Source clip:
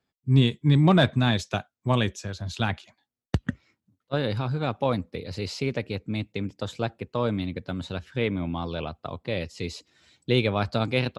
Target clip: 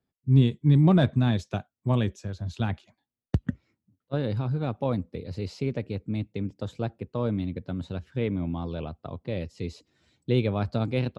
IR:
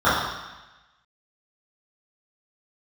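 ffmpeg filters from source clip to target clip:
-af "tiltshelf=frequency=680:gain=5.5,volume=-4.5dB"

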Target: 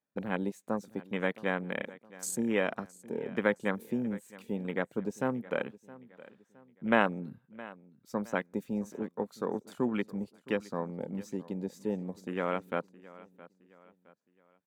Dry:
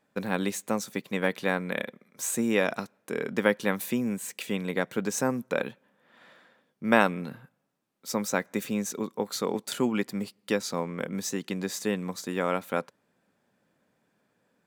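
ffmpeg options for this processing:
ffmpeg -i in.wav -af "afwtdn=0.02,aecho=1:1:666|1332|1998:0.106|0.0424|0.0169,volume=-4dB" out.wav

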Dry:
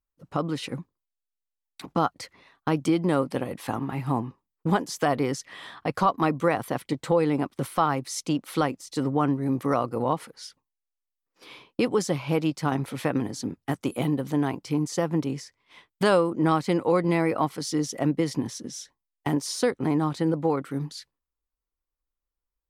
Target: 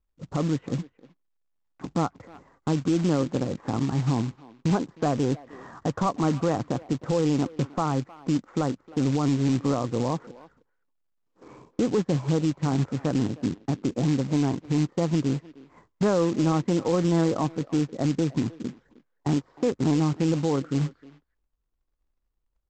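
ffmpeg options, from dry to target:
ffmpeg -i in.wav -filter_complex "[0:a]lowpass=frequency=1500:width=0.5412,lowpass=frequency=1500:width=1.3066,lowshelf=frequency=420:gain=11.5,asplit=2[link_01][link_02];[link_02]acompressor=threshold=-33dB:ratio=4,volume=-1dB[link_03];[link_01][link_03]amix=inputs=2:normalize=0,alimiter=limit=-9.5dB:level=0:latency=1:release=29,aresample=16000,acrusher=bits=4:mode=log:mix=0:aa=0.000001,aresample=44100,asplit=2[link_04][link_05];[link_05]adelay=310,highpass=300,lowpass=3400,asoftclip=type=hard:threshold=-16dB,volume=-18dB[link_06];[link_04][link_06]amix=inputs=2:normalize=0,volume=-5.5dB" out.wav

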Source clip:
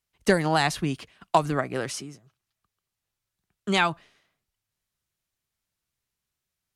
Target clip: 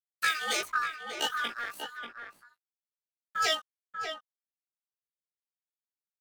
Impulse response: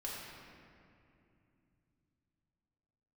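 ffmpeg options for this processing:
-filter_complex "[0:a]afftfilt=real='real(if(lt(b,1008),b+24*(1-2*mod(floor(b/24),2)),b),0)':imag='imag(if(lt(b,1008),b+24*(1-2*mod(floor(b/24),2)),b),0)':win_size=2048:overlap=0.75,highpass=270,highshelf=frequency=2100:gain=6,asetrate=74167,aresample=44100,atempo=0.594604,asplit=2[link_01][link_02];[link_02]adynamicsmooth=sensitivity=6.5:basefreq=1200,volume=2dB[link_03];[link_01][link_03]amix=inputs=2:normalize=0,aeval=exprs='sgn(val(0))*max(abs(val(0))-0.0119,0)':channel_layout=same,flanger=delay=19:depth=2.2:speed=1.3,acrossover=split=1900[link_04][link_05];[link_04]aeval=exprs='val(0)*(1-0.7/2+0.7/2*cos(2*PI*1.1*n/s))':channel_layout=same[link_06];[link_05]aeval=exprs='val(0)*(1-0.7/2-0.7/2*cos(2*PI*1.1*n/s))':channel_layout=same[link_07];[link_06][link_07]amix=inputs=2:normalize=0,asplit=2[link_08][link_09];[link_09]adelay=641.4,volume=-6dB,highshelf=frequency=4000:gain=-14.4[link_10];[link_08][link_10]amix=inputs=2:normalize=0,asetrate=48000,aresample=44100,volume=-6dB"

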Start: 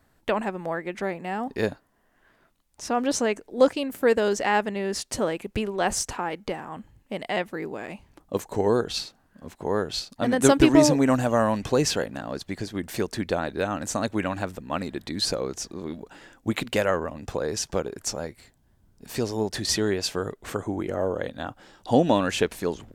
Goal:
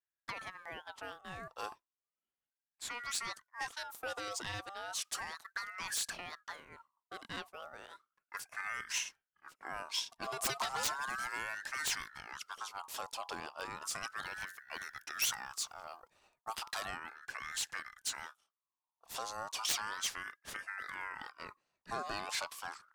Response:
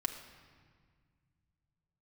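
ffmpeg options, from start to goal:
-filter_complex "[0:a]acrossover=split=120|3000[link_01][link_02][link_03];[link_02]acompressor=threshold=-47dB:ratio=2[link_04];[link_01][link_04][link_03]amix=inputs=3:normalize=0,aeval=exprs='0.668*(cos(1*acos(clip(val(0)/0.668,-1,1)))-cos(1*PI/2))+0.0119*(cos(3*acos(clip(val(0)/0.668,-1,1)))-cos(3*PI/2))+0.00376*(cos(5*acos(clip(val(0)/0.668,-1,1)))-cos(5*PI/2))+0.133*(cos(7*acos(clip(val(0)/0.668,-1,1)))-cos(7*PI/2))':channel_layout=same,asettb=1/sr,asplit=3[link_05][link_06][link_07];[link_05]atrim=end=14.214[link_08];[link_06]atrim=start=14.21:end=16.54,asetpts=PTS-STARTPTS,afade=type=in:duration=0.004:curve=qsin,afade=type=out:start_time=2.326:duration=0.004:curve=qsin,highshelf=frequency=11000:gain=10.5[link_09];[link_07]atrim=start=16.536[link_10];[link_08][link_09]acrossfade=duration=0.004:curve1=hsin:curve2=qsin[link_11];[link_11][link_10]acrossfade=duration=0.004:curve1=qsin:curve2=hsin,asoftclip=type=hard:threshold=-21dB,adynamicequalizer=threshold=0.00316:dfrequency=3500:dqfactor=1.6:tfrequency=3500:tqfactor=1.6:attack=5:release=100:ratio=0.375:range=2.5:mode=boostabove:tftype=bell,agate=range=-33dB:threshold=-46dB:ratio=3:detection=peak,aeval=exprs='val(0)*sin(2*PI*1300*n/s+1300*0.3/0.34*sin(2*PI*0.34*n/s))':channel_layout=same,volume=5dB"

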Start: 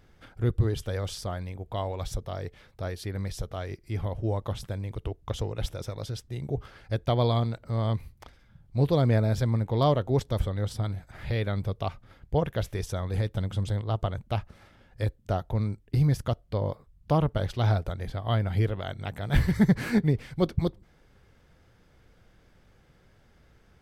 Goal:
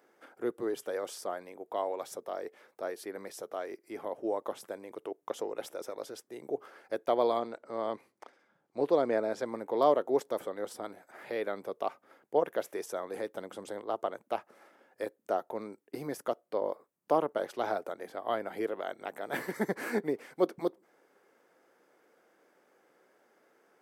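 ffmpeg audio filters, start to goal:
ffmpeg -i in.wav -filter_complex "[0:a]highpass=frequency=320:width=0.5412,highpass=frequency=320:width=1.3066,equalizer=frequency=3700:width_type=o:width=1.5:gain=-11.5,asettb=1/sr,asplit=3[link_01][link_02][link_03];[link_01]atrim=end=7.394[link_04];[link_02]atrim=start=7.39:end=9.46,asetpts=PTS-STARTPTS,afade=type=in:duration=0.004:curve=qsin,afade=type=out:start_time=2.066:duration=0.004:curve=qsin,lowpass=7300[link_05];[link_03]atrim=start=9.456[link_06];[link_04][link_05]acrossfade=duration=0.004:curve1=hsin:curve2=qsin[link_07];[link_07][link_06]acrossfade=duration=0.004:curve1=qsin:curve2=hsin,volume=1dB" out.wav

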